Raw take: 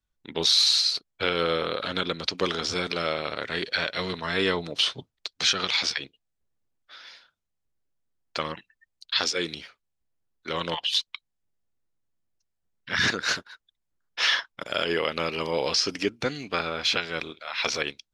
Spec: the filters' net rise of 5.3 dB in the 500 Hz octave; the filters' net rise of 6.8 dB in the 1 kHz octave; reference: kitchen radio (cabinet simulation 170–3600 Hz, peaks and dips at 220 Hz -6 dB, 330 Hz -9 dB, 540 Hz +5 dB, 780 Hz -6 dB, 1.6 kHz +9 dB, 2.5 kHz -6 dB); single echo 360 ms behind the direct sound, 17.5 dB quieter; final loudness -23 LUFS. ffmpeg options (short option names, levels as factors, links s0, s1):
-af "highpass=170,equalizer=f=220:t=q:w=4:g=-6,equalizer=f=330:t=q:w=4:g=-9,equalizer=f=540:t=q:w=4:g=5,equalizer=f=780:t=q:w=4:g=-6,equalizer=f=1600:t=q:w=4:g=9,equalizer=f=2500:t=q:w=4:g=-6,lowpass=f=3600:w=0.5412,lowpass=f=3600:w=1.3066,equalizer=f=500:t=o:g=3,equalizer=f=1000:t=o:g=7.5,aecho=1:1:360:0.133,volume=1.12"